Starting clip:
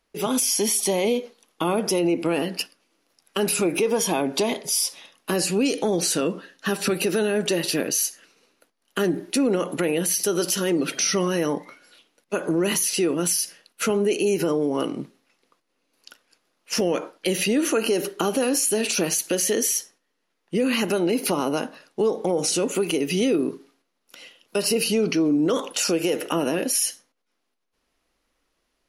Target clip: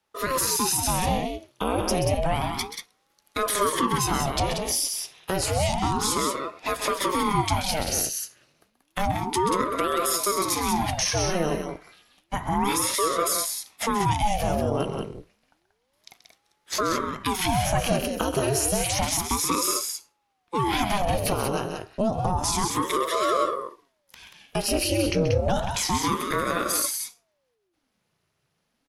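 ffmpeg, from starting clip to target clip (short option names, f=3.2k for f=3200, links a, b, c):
-af "aecho=1:1:131.2|183.7:0.316|0.501,aeval=exprs='val(0)*sin(2*PI*490*n/s+490*0.75/0.3*sin(2*PI*0.3*n/s))':c=same"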